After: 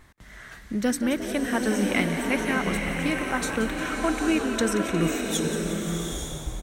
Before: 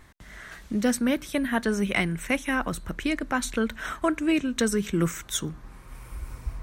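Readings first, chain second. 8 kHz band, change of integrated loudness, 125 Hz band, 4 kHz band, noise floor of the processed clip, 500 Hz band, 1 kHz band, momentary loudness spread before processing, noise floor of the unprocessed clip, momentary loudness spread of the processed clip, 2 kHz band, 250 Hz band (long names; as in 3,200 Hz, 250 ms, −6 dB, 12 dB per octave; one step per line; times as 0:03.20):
+1.5 dB, +1.0 dB, +1.5 dB, +2.0 dB, −46 dBFS, +2.0 dB, +2.0 dB, 17 LU, −49 dBFS, 8 LU, +1.5 dB, +1.0 dB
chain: echo with shifted repeats 178 ms, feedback 64%, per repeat +78 Hz, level −12.5 dB
slow-attack reverb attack 870 ms, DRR 1.5 dB
level −1 dB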